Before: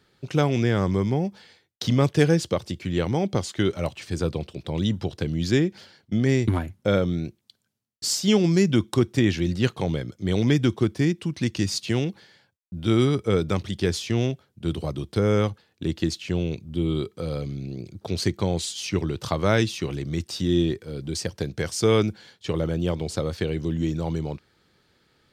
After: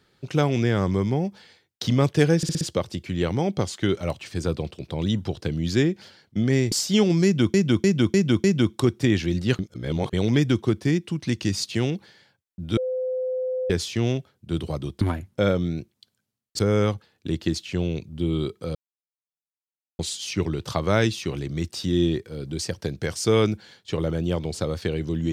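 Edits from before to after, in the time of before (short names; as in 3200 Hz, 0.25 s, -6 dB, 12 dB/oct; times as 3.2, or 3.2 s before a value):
2.37 stutter 0.06 s, 5 plays
6.48–8.06 move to 15.15
8.58–8.88 loop, 5 plays
9.73–10.27 reverse
12.91–13.84 bleep 512 Hz -23.5 dBFS
17.31–18.55 mute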